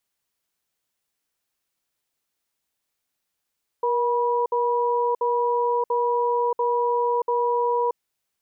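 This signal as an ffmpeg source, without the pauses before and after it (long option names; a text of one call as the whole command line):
ffmpeg -f lavfi -i "aevalsrc='0.0794*(sin(2*PI*476*t)+sin(2*PI*972*t))*clip(min(mod(t,0.69),0.63-mod(t,0.69))/0.005,0,1)':duration=4.09:sample_rate=44100" out.wav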